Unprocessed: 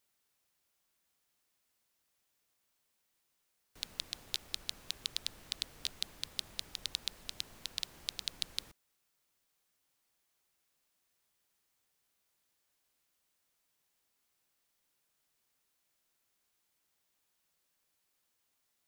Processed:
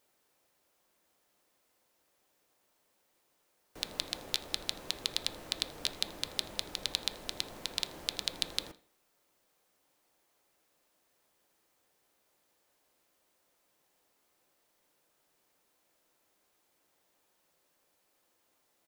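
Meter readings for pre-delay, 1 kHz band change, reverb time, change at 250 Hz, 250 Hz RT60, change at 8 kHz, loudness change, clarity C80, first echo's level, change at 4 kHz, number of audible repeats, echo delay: 3 ms, +10.5 dB, 0.45 s, +11.0 dB, 0.45 s, +3.5 dB, +4.5 dB, 20.0 dB, -23.0 dB, +4.5 dB, 2, 81 ms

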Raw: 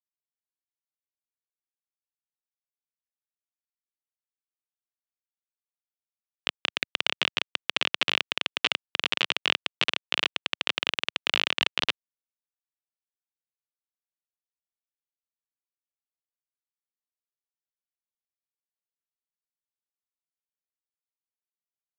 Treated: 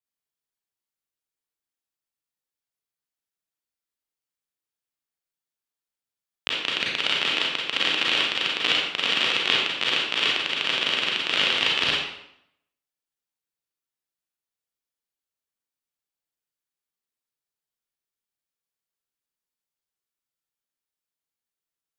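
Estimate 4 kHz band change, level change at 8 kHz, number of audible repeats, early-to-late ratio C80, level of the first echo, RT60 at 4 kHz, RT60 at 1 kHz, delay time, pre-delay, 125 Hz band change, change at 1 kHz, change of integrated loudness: +5.0 dB, +4.0 dB, no echo, 3.5 dB, no echo, 0.60 s, 0.75 s, no echo, 31 ms, +5.5 dB, +4.0 dB, +5.0 dB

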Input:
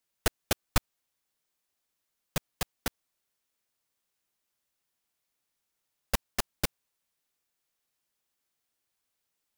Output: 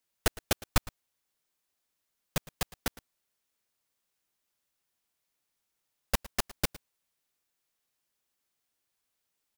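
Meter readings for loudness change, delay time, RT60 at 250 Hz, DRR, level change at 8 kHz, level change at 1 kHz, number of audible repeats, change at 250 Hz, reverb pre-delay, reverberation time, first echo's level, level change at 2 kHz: 0.0 dB, 110 ms, no reverb, no reverb, 0.0 dB, 0.0 dB, 1, 0.0 dB, no reverb, no reverb, -19.5 dB, 0.0 dB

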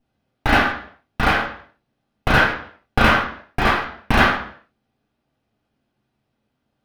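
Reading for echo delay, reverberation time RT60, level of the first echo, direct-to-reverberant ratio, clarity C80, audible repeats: no echo, 0.55 s, no echo, -2.0 dB, 9.0 dB, no echo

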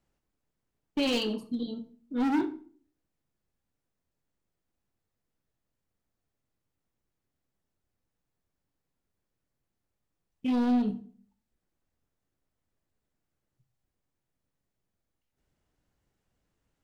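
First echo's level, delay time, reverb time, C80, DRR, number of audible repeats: no echo, no echo, 0.50 s, 19.5 dB, 9.0 dB, no echo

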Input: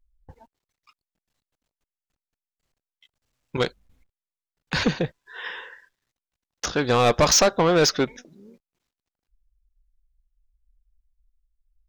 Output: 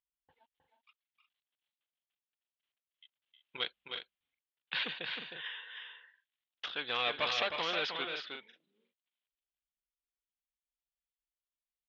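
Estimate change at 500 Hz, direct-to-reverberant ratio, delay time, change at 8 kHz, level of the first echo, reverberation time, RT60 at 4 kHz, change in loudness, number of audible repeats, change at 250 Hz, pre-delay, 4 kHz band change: -19.0 dB, no reverb, 312 ms, -33.0 dB, -6.0 dB, no reverb, no reverb, -14.5 dB, 2, -24.5 dB, no reverb, -7.5 dB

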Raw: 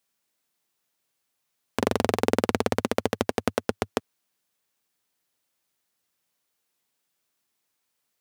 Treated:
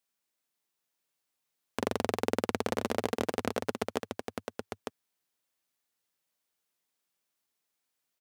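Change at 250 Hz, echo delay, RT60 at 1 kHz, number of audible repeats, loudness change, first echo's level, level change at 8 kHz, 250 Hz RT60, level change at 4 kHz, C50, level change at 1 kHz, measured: -6.5 dB, 901 ms, no reverb, 1, -7.0 dB, -5.5 dB, -5.5 dB, no reverb, -5.5 dB, no reverb, -5.5 dB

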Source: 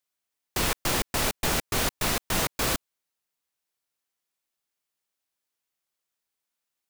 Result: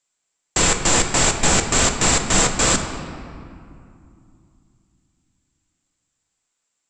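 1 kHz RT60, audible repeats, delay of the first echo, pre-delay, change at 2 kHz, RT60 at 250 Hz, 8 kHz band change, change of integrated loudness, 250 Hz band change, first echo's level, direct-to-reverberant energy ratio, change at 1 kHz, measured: 2.5 s, no echo, no echo, 4 ms, +8.5 dB, 3.6 s, +14.0 dB, +9.5 dB, +9.5 dB, no echo, 4.5 dB, +9.0 dB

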